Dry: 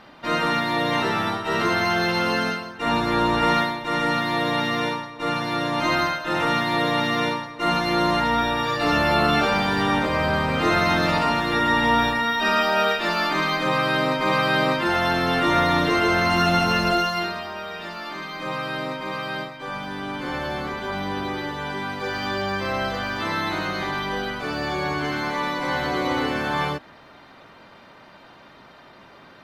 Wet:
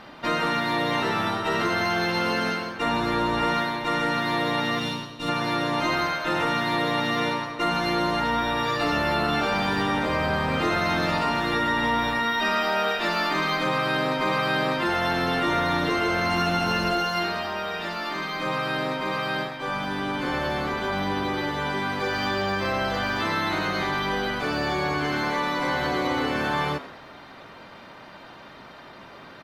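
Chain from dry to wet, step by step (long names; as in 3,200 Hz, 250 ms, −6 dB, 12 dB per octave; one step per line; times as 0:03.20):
gain on a spectral selection 0:04.79–0:05.29, 300–2,400 Hz −10 dB
downward compressor 3 to 1, threshold −26 dBFS, peak gain reduction 8.5 dB
echo with shifted repeats 92 ms, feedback 48%, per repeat +110 Hz, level −15.5 dB
level +3 dB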